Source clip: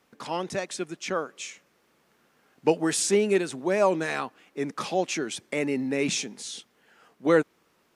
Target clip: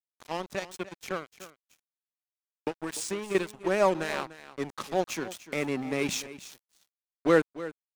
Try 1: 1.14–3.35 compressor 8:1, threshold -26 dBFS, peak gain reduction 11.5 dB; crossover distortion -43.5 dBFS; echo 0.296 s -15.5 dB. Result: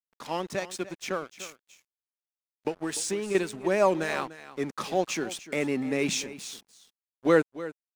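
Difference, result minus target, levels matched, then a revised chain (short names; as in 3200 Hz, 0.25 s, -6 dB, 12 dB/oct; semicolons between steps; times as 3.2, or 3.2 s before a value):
crossover distortion: distortion -9 dB
1.14–3.35 compressor 8:1, threshold -26 dBFS, peak gain reduction 11.5 dB; crossover distortion -33.5 dBFS; echo 0.296 s -15.5 dB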